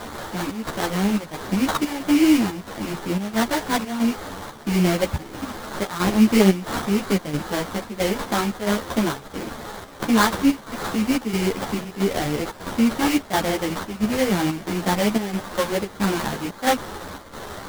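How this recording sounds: a quantiser's noise floor 6-bit, dither triangular; chopped level 1.5 Hz, depth 60%, duty 75%; aliases and images of a low sample rate 2.6 kHz, jitter 20%; a shimmering, thickened sound

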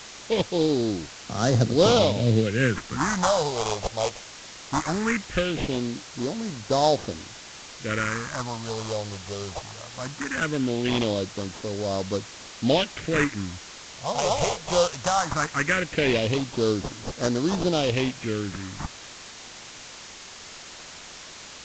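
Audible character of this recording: aliases and images of a low sample rate 4.4 kHz, jitter 20%; phasing stages 4, 0.19 Hz, lowest notch 270–2400 Hz; a quantiser's noise floor 6-bit, dither triangular; µ-law

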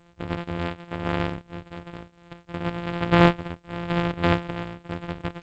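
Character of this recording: a buzz of ramps at a fixed pitch in blocks of 256 samples; tremolo triangle 1 Hz, depth 80%; G.722

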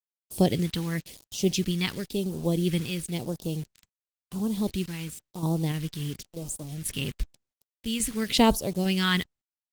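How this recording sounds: random-step tremolo, depth 80%; a quantiser's noise floor 8-bit, dither none; phasing stages 2, 0.96 Hz, lowest notch 600–1900 Hz; Opus

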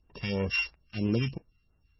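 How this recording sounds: a buzz of ramps at a fixed pitch in blocks of 16 samples; phasing stages 2, 3 Hz, lowest notch 480–4800 Hz; MP3

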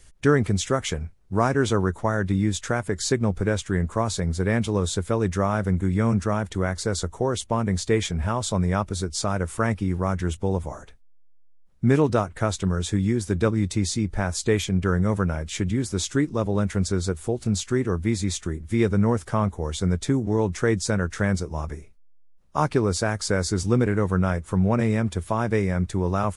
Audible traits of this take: noise floor -48 dBFS; spectral tilt -6.0 dB/octave

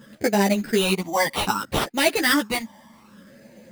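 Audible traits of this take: phasing stages 12, 0.63 Hz, lowest notch 440–1200 Hz; aliases and images of a low sample rate 6.7 kHz, jitter 0%; a shimmering, thickened sound

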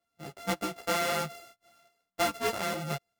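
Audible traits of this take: a buzz of ramps at a fixed pitch in blocks of 64 samples; tremolo saw up 1.6 Hz, depth 35%; a shimmering, thickened sound

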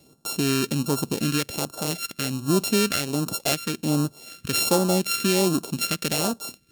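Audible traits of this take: a buzz of ramps at a fixed pitch in blocks of 32 samples; phasing stages 2, 1.3 Hz, lowest notch 790–2000 Hz; Vorbis

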